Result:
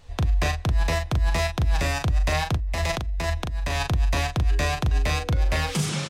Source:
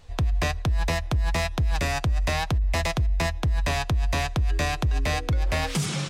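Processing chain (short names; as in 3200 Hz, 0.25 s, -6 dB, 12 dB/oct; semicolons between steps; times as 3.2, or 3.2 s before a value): 2.56–3.88 negative-ratio compressor -27 dBFS, ratio -1; doubler 39 ms -6 dB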